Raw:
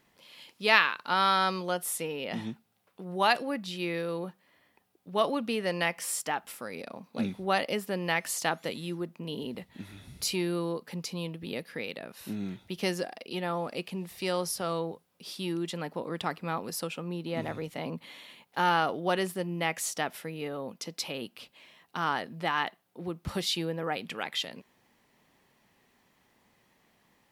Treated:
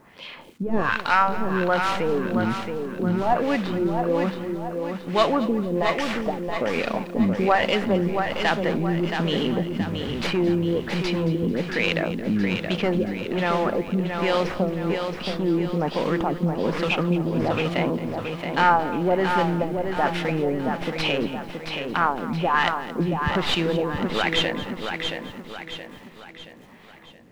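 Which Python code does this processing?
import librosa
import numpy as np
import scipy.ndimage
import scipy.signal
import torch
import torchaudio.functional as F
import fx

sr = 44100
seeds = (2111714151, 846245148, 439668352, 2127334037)

p1 = fx.tracing_dist(x, sr, depth_ms=0.3)
p2 = fx.high_shelf(p1, sr, hz=8300.0, db=9.0)
p3 = fx.over_compress(p2, sr, threshold_db=-39.0, ratio=-1.0)
p4 = p2 + (p3 * 10.0 ** (-1.5 / 20.0))
p5 = fx.mod_noise(p4, sr, seeds[0], snr_db=10)
p6 = fx.filter_lfo_lowpass(p5, sr, shape='sine', hz=1.2, low_hz=250.0, high_hz=3100.0, q=1.4)
p7 = fx.quant_dither(p6, sr, seeds[1], bits=12, dither='none')
p8 = p7 + fx.echo_feedback(p7, sr, ms=674, feedback_pct=44, wet_db=-6, dry=0)
p9 = fx.echo_crushed(p8, sr, ms=222, feedback_pct=35, bits=8, wet_db=-15.0)
y = p9 * 10.0 ** (6.0 / 20.0)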